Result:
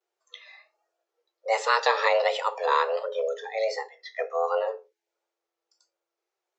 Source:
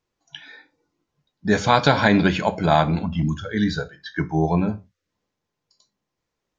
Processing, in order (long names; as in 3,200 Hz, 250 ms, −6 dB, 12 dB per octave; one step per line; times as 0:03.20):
pitch vibrato 1.4 Hz 96 cents
frequency shifter +340 Hz
level −6 dB